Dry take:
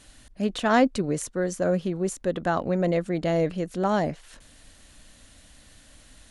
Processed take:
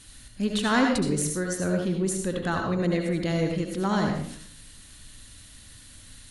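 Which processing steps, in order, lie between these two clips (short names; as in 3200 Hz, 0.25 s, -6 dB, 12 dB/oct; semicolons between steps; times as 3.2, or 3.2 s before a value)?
fifteen-band EQ 100 Hz +7 dB, 630 Hz -11 dB, 4000 Hz +4 dB, 10000 Hz +7 dB; reverb RT60 0.55 s, pre-delay 65 ms, DRR 2 dB; soft clip -11 dBFS, distortion -25 dB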